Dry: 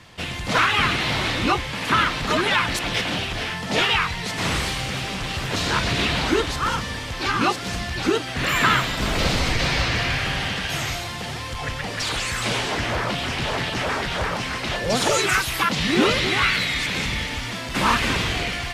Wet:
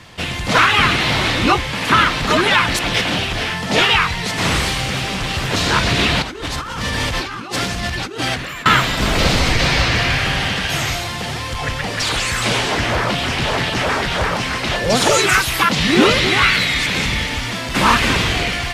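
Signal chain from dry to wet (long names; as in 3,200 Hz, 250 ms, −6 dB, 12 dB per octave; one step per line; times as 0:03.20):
0:06.22–0:08.66: compressor whose output falls as the input rises −31 dBFS, ratio −1
level +6 dB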